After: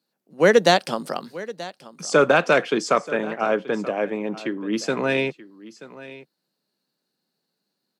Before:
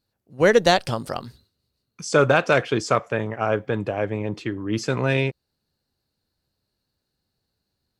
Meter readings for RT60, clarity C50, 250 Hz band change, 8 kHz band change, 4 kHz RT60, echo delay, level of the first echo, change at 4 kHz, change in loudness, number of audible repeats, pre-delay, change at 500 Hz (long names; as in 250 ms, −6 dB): no reverb audible, no reverb audible, +1.0 dB, +1.0 dB, no reverb audible, 931 ms, −17.5 dB, +1.0 dB, +0.5 dB, 1, no reverb audible, +1.0 dB